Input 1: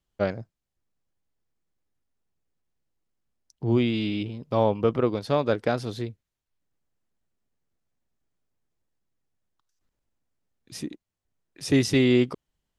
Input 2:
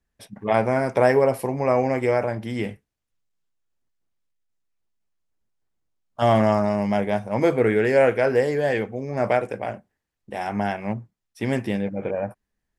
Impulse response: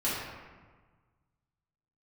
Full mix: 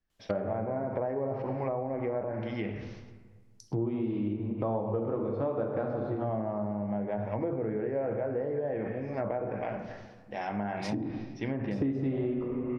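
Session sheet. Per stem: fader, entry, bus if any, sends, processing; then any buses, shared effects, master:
+2.5 dB, 0.10 s, send −6.5 dB, low-shelf EQ 460 Hz −4.5 dB
−7.5 dB, 0.00 s, send −13.5 dB, elliptic low-pass filter 5,800 Hz, stop band 40 dB; level that may fall only so fast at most 67 dB per second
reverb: on, RT60 1.4 s, pre-delay 3 ms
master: treble cut that deepens with the level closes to 920 Hz, closed at −23.5 dBFS; downward compressor 8 to 1, threshold −28 dBFS, peak gain reduction 17.5 dB

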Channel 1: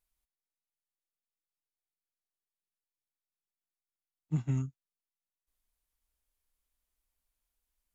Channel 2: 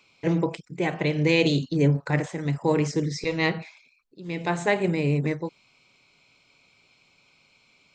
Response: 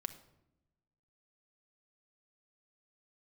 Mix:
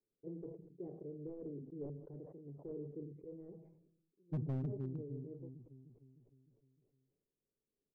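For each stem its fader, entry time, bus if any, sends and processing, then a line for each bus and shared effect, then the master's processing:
+3.0 dB, 0.00 s, send −9.5 dB, echo send −4 dB, spectral dynamics exaggerated over time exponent 1.5
−18.0 dB, 0.00 s, send −19.5 dB, no echo send, wrap-around overflow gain 12.5 dB; automatic ducking −13 dB, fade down 1.00 s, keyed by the first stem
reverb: on, RT60 0.90 s, pre-delay 5 ms
echo: repeating echo 305 ms, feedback 53%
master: transistor ladder low-pass 470 Hz, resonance 60%; gain into a clipping stage and back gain 33.5 dB; level that may fall only so fast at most 60 dB per second

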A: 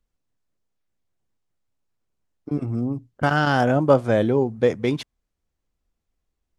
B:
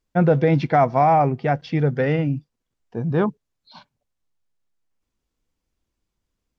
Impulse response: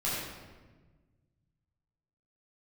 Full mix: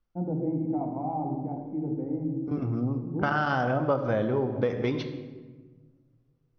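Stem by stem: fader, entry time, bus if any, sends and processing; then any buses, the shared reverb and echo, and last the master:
−2.5 dB, 0.00 s, send −15 dB, Chebyshev low-pass filter 6,200 Hz, order 10; high-shelf EQ 4,300 Hz −6 dB
−6.5 dB, 0.00 s, send −6.5 dB, formant resonators in series u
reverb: on, RT60 1.3 s, pre-delay 9 ms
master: parametric band 1,200 Hz +5 dB 0.76 octaves; hum removal 144 Hz, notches 32; downward compressor 4 to 1, threshold −23 dBFS, peak gain reduction 10 dB

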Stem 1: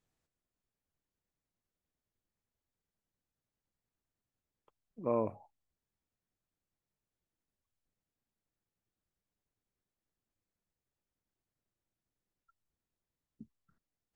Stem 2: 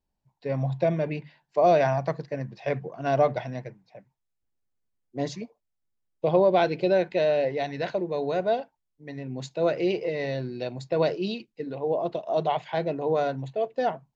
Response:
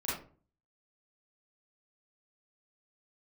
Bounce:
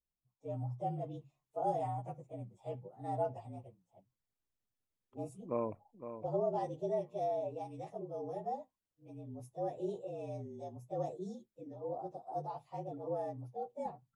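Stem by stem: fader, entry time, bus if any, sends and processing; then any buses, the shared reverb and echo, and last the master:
−3.0 dB, 0.45 s, no send, echo send −10 dB, reverb reduction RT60 0.78 s
−11.5 dB, 0.00 s, no send, no echo send, partials spread apart or drawn together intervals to 113%; flat-topped bell 2,700 Hz −14 dB 2.7 octaves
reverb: not used
echo: repeating echo 511 ms, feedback 26%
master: no processing

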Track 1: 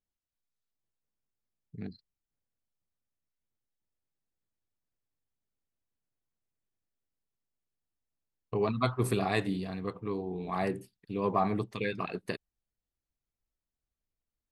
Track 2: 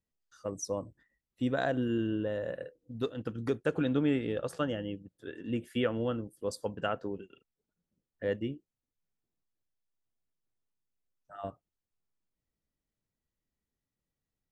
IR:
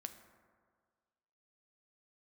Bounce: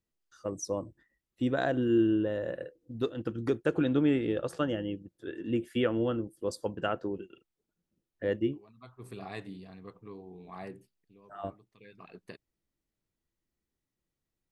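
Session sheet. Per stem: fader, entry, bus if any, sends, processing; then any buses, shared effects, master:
−11.5 dB, 0.00 s, no send, automatic ducking −19 dB, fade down 0.45 s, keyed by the second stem
+1.0 dB, 0.00 s, no send, parametric band 340 Hz +8.5 dB 0.21 octaves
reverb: not used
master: high-shelf EQ 9,600 Hz −4 dB

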